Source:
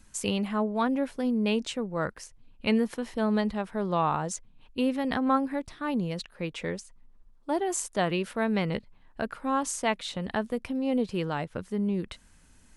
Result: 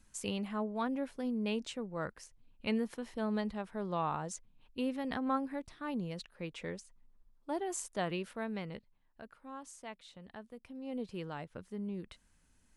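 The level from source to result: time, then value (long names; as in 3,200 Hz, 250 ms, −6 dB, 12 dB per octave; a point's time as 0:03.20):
0:08.14 −8.5 dB
0:09.26 −19.5 dB
0:10.54 −19.5 dB
0:11.05 −11.5 dB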